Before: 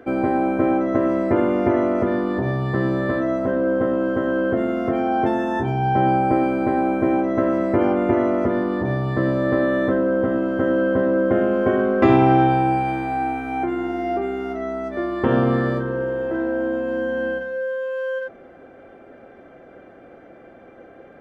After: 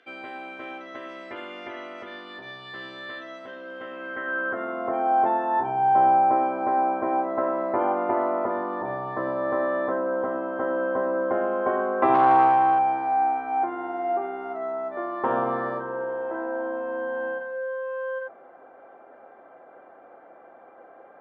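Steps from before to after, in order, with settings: 12.14–12.79 self-modulated delay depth 0.24 ms; band-pass sweep 3400 Hz -> 930 Hz, 3.68–4.87; gain +4.5 dB

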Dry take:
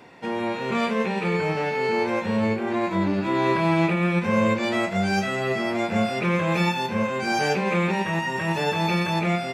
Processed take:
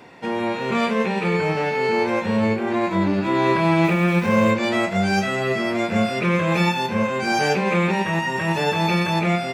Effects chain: 3.84–4.51 zero-crossing step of -36.5 dBFS; 5.43–6.52 bell 810 Hz -7 dB 0.23 oct; gain +3 dB

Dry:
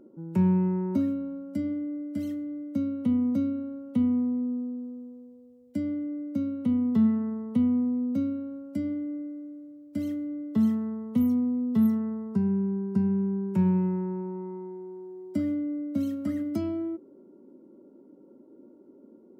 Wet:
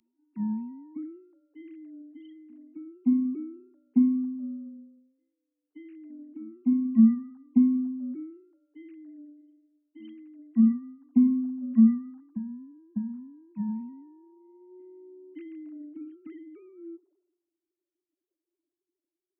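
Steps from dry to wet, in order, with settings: sine-wave speech; reverse echo 0.567 s -21.5 dB; three-band expander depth 100%; gain -7.5 dB

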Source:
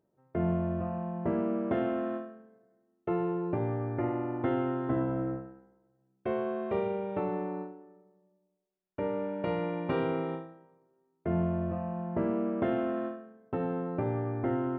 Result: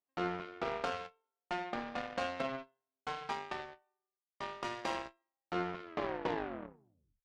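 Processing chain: tape stop at the end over 2.92 s; wide varispeed 2.04×; added harmonics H 3 -44 dB, 6 -42 dB, 7 -18 dB, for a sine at -16.5 dBFS; gain -5 dB

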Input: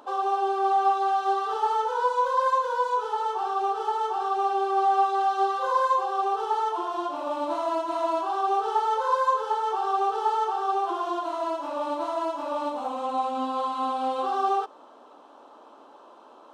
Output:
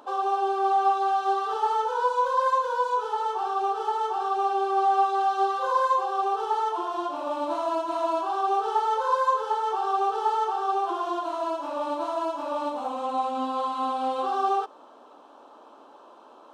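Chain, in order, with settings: notch 2000 Hz, Q 24

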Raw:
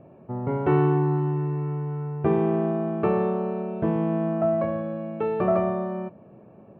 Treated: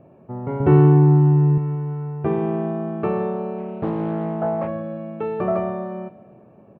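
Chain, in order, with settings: 0.6–1.58 low shelf 330 Hz +12 dB; feedback echo 0.177 s, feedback 56%, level -20 dB; 3.58–4.68 Doppler distortion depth 0.43 ms

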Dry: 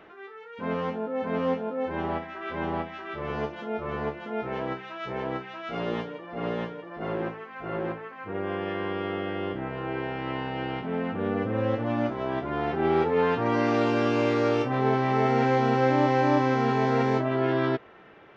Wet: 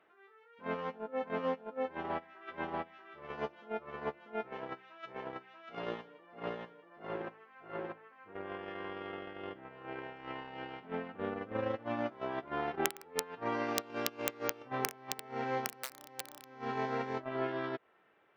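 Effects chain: LPF 1300 Hz 6 dB/oct; wrapped overs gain 13.5 dB; tilt +3.5 dB/oct; compressor 16:1, threshold -32 dBFS, peak gain reduction 20 dB; gate -34 dBFS, range -21 dB; gain +7 dB

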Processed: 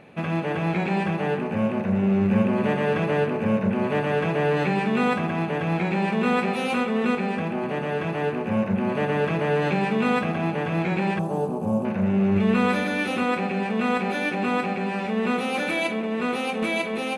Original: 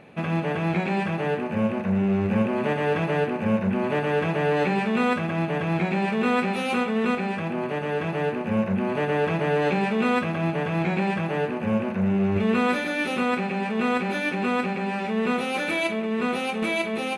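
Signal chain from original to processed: 11.19–11.85 EQ curve 990 Hz 0 dB, 1900 Hz -25 dB, 8300 Hz +7 dB; on a send: analogue delay 0.143 s, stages 1024, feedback 70%, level -10 dB

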